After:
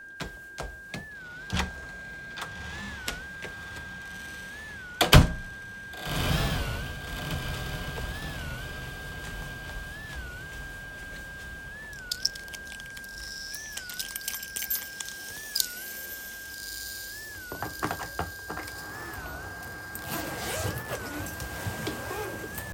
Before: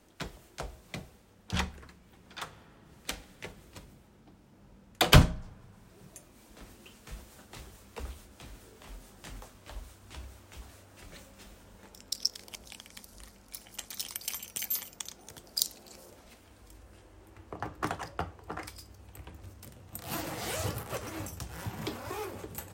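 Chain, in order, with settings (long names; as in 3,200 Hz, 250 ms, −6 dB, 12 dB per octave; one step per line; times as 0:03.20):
steady tone 1,600 Hz −45 dBFS
feedback delay with all-pass diffusion 1,252 ms, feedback 57%, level −7 dB
wow of a warped record 33 1/3 rpm, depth 160 cents
level +2.5 dB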